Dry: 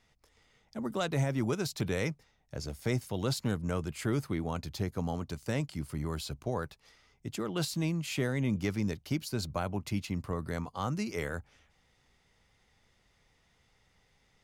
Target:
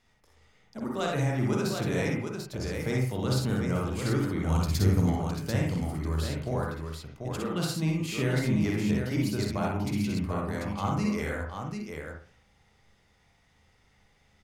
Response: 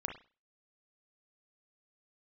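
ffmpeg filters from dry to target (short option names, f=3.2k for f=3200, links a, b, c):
-filter_complex "[0:a]asettb=1/sr,asplit=3[a][b][c];[a]atrim=end=4.454[d];[b]atrim=start=4.45:end=5.1,asetpts=PTS-STARTPTS,afade=t=in:d=0.004:c=qsin,afade=t=out:st=0.646:d=0.004:c=qsin,bass=f=250:g=9,treble=f=4k:g=11[e];[c]atrim=start=5.096[f];[d][e]acrossfade=d=0.004:c1=hsin:c2=qsin[g];[g][f]acrossfade=d=0.004:c1=qsin:c2=hsin,aecho=1:1:52|62|741:0.447|0.596|0.562[h];[1:a]atrim=start_sample=2205,asetrate=36603,aresample=44100[i];[h][i]afir=irnorm=-1:irlink=0"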